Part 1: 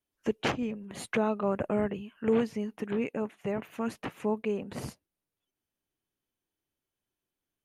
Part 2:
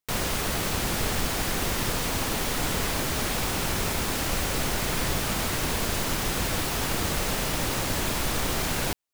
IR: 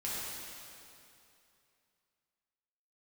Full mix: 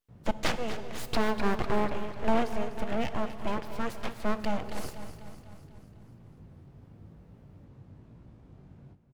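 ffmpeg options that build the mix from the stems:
-filter_complex "[0:a]aeval=exprs='abs(val(0))':channel_layout=same,volume=2dB,asplit=3[link_01][link_02][link_03];[link_02]volume=-15dB[link_04];[link_03]volume=-11dB[link_05];[1:a]bandpass=frequency=120:width_type=q:width=1.3:csg=0,flanger=delay=17.5:depth=4.3:speed=0.97,volume=-12.5dB,asplit=2[link_06][link_07];[link_07]volume=-13dB[link_08];[2:a]atrim=start_sample=2205[link_09];[link_04][link_09]afir=irnorm=-1:irlink=0[link_10];[link_05][link_08]amix=inputs=2:normalize=0,aecho=0:1:248|496|744|992|1240|1488|1736|1984|2232:1|0.57|0.325|0.185|0.106|0.0602|0.0343|0.0195|0.0111[link_11];[link_01][link_06][link_10][link_11]amix=inputs=4:normalize=0"

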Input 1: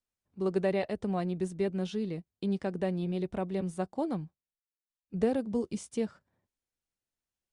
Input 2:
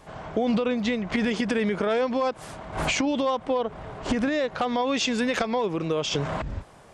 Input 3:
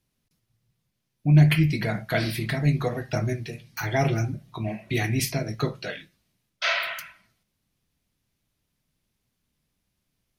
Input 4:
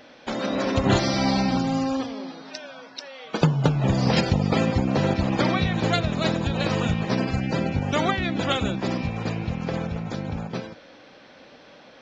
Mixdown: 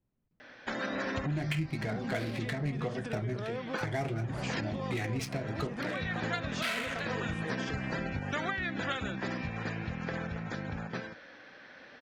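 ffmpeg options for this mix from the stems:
ffmpeg -i stem1.wav -i stem2.wav -i stem3.wav -i stem4.wav -filter_complex "[0:a]adelay=1550,volume=-12.5dB[link_01];[1:a]adelay=1550,volume=-13dB[link_02];[2:a]bandreject=frequency=50:width_type=h:width=6,bandreject=frequency=100:width_type=h:width=6,bandreject=frequency=150:width_type=h:width=6,adynamicsmooth=sensitivity=5.5:basefreq=1300,volume=-2dB,asplit=2[link_03][link_04];[3:a]equalizer=frequency=1700:width=2.1:gain=12.5,adelay=400,volume=-7.5dB[link_05];[link_04]apad=whole_len=547287[link_06];[link_05][link_06]sidechaincompress=threshold=-36dB:ratio=8:attack=7.6:release=390[link_07];[link_01][link_02][link_03][link_07]amix=inputs=4:normalize=0,acompressor=threshold=-32dB:ratio=3" out.wav

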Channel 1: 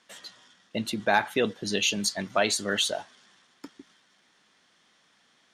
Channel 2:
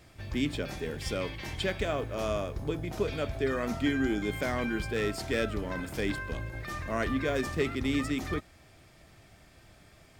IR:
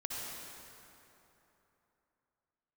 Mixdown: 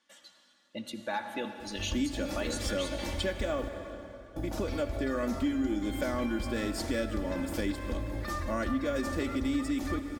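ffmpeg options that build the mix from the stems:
-filter_complex "[0:a]volume=-14dB,asplit=2[link_01][link_02];[link_02]volume=-6.5dB[link_03];[1:a]equalizer=frequency=2500:width=1.3:gain=-5.5,adelay=1600,volume=0.5dB,asplit=3[link_04][link_05][link_06];[link_04]atrim=end=3.69,asetpts=PTS-STARTPTS,afade=type=out:start_time=3.686:duration=0.004:curve=hsin[link_07];[link_05]atrim=start=3.69:end=4.36,asetpts=PTS-STARTPTS,volume=0[link_08];[link_06]atrim=start=4.36,asetpts=PTS-STARTPTS,afade=type=in:duration=0.004:curve=hsin[link_09];[link_07][link_08][link_09]concat=n=3:v=0:a=1,asplit=2[link_10][link_11];[link_11]volume=-10dB[link_12];[2:a]atrim=start_sample=2205[link_13];[link_03][link_12]amix=inputs=2:normalize=0[link_14];[link_14][link_13]afir=irnorm=-1:irlink=0[link_15];[link_01][link_10][link_15]amix=inputs=3:normalize=0,aecho=1:1:3.5:0.77,acompressor=threshold=-29dB:ratio=3"

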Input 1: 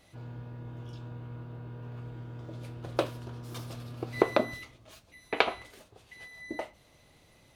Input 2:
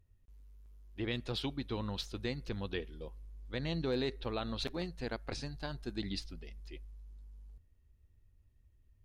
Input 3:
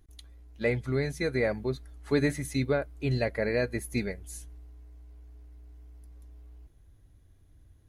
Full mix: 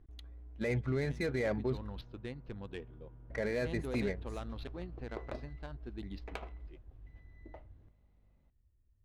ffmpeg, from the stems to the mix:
ffmpeg -i stem1.wav -i stem2.wav -i stem3.wav -filter_complex "[0:a]aeval=exprs='val(0)+0.002*(sin(2*PI*50*n/s)+sin(2*PI*2*50*n/s)/2+sin(2*PI*3*50*n/s)/3+sin(2*PI*4*50*n/s)/4+sin(2*PI*5*50*n/s)/5)':channel_layout=same,adelay=950,volume=-16dB[link_01];[1:a]lowpass=5200,volume=-5.5dB,afade=type=in:start_time=1.33:duration=0.6:silence=0.281838[link_02];[2:a]volume=1dB,asplit=3[link_03][link_04][link_05];[link_03]atrim=end=2.01,asetpts=PTS-STARTPTS,afade=type=out:start_time=2.006:duration=0.004:curve=hsin[link_06];[link_04]atrim=start=2.01:end=3.3,asetpts=PTS-STARTPTS,volume=0[link_07];[link_05]atrim=start=3.3,asetpts=PTS-STARTPTS,afade=type=in:duration=0.004:curve=hsin[link_08];[link_06][link_07][link_08]concat=n=3:v=0:a=1[link_09];[link_01][link_02][link_09]amix=inputs=3:normalize=0,adynamicsmooth=sensitivity=8:basefreq=1800,alimiter=level_in=1.5dB:limit=-24dB:level=0:latency=1:release=22,volume=-1.5dB" out.wav

